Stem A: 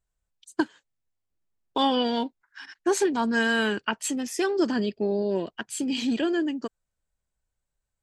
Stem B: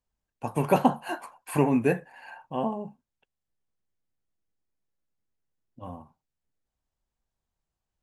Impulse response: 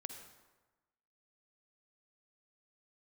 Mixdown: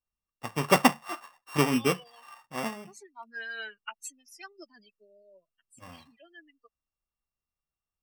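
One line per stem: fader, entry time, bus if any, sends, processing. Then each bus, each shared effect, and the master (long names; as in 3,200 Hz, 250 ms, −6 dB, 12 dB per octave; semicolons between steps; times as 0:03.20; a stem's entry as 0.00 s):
−6.0 dB, 0.00 s, no send, spectral dynamics exaggerated over time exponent 3; high-pass filter 720 Hz 12 dB per octave; automatic ducking −12 dB, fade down 1.70 s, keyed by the second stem
0.0 dB, 0.00 s, no send, samples sorted by size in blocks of 16 samples; parametric band 1,200 Hz +14.5 dB 0.3 octaves; expander for the loud parts 1.5 to 1, over −34 dBFS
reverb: not used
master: no processing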